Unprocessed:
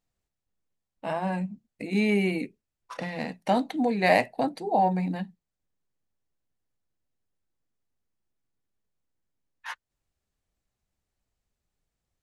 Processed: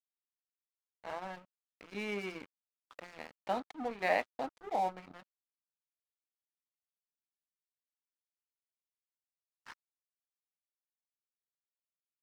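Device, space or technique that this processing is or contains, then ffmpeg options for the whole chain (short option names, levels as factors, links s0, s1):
pocket radio on a weak battery: -af "highpass=310,lowpass=3600,aeval=exprs='sgn(val(0))*max(abs(val(0))-0.015,0)':c=same,equalizer=f=1300:t=o:w=0.37:g=6,volume=0.376"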